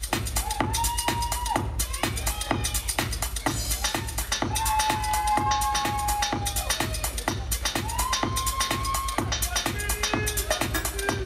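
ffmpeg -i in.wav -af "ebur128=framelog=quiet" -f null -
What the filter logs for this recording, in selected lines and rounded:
Integrated loudness:
  I:         -26.1 LUFS
  Threshold: -36.1 LUFS
Loudness range:
  LRA:         1.6 LU
  Threshold: -46.1 LUFS
  LRA low:   -26.9 LUFS
  LRA high:  -25.2 LUFS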